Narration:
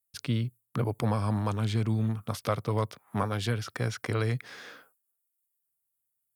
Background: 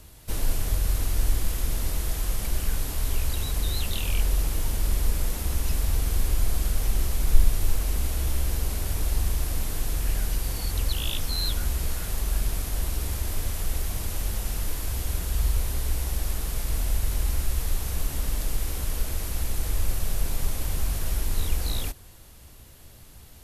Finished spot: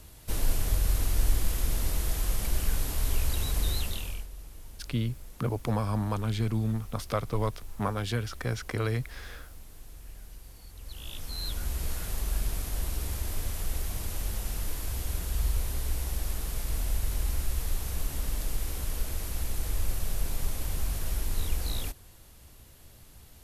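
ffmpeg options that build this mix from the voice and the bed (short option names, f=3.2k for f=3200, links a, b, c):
-filter_complex "[0:a]adelay=4650,volume=-1dB[a];[1:a]volume=14.5dB,afade=t=out:st=3.69:d=0.58:silence=0.11885,afade=t=in:st=10.79:d=1.13:silence=0.158489[b];[a][b]amix=inputs=2:normalize=0"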